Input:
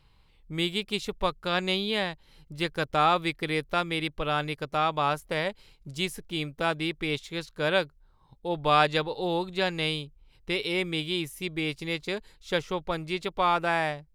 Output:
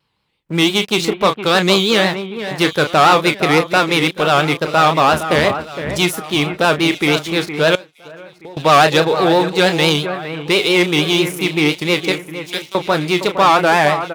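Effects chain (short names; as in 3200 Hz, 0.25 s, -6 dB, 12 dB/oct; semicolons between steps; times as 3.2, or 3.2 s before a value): 5.12–5.98 octaver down 1 oct, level +4 dB; 12.12–12.75 differentiator; doubler 32 ms -10 dB; vibrato 5.9 Hz 100 cents; sample leveller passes 3; HPF 150 Hz 12 dB/oct; echo with dull and thin repeats by turns 0.463 s, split 2500 Hz, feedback 59%, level -10 dB; 7.75–8.57 compressor 8:1, threshold -38 dBFS, peak gain reduction 23.5 dB; gain +4.5 dB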